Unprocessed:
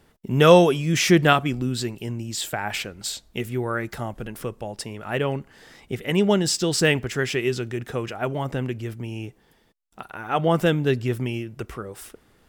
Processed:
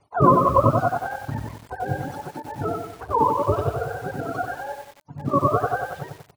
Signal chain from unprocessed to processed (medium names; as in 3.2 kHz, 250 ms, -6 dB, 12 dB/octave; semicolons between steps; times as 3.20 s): spectrum inverted on a logarithmic axis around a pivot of 430 Hz; comb 7 ms, depth 43%; granular stretch 0.51×, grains 38 ms; high-order bell 830 Hz +8.5 dB 1.1 oct; band-stop 1.7 kHz, Q 29; de-hum 306.6 Hz, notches 36; bit-crushed delay 93 ms, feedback 55%, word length 7-bit, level -4.5 dB; trim -2 dB